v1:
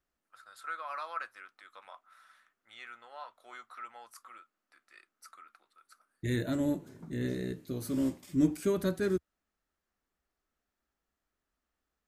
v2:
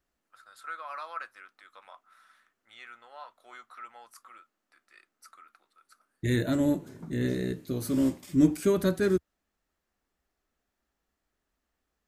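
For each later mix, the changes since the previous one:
second voice +5.0 dB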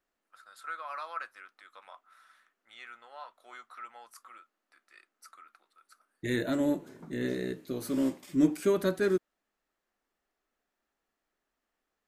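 second voice: add tone controls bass -5 dB, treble -4 dB; master: add peaking EQ 74 Hz -11.5 dB 1.4 oct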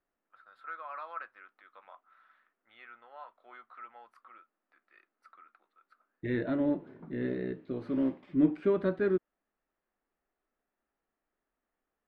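second voice: add low-pass 5.9 kHz; master: add distance through air 470 m

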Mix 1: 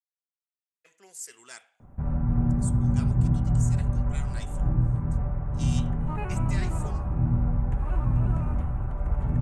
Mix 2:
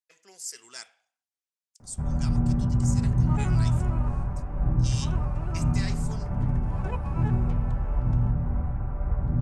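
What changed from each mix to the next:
speech: entry -0.75 s; second sound: entry -2.80 s; master: add peaking EQ 5.1 kHz +11 dB 0.53 oct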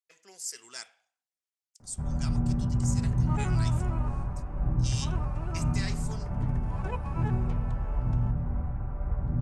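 first sound -3.5 dB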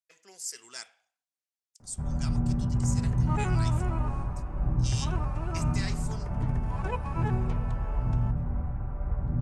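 second sound +3.5 dB

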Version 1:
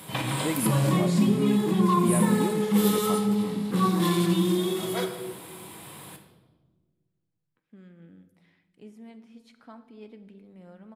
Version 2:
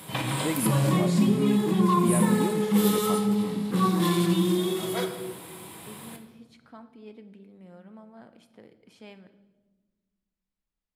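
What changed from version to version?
second voice: entry -2.95 s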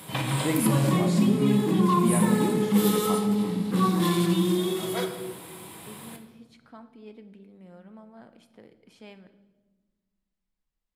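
first voice: send on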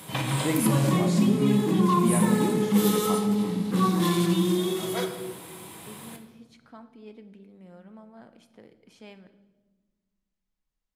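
master: add peaking EQ 6.2 kHz +4.5 dB 0.29 oct

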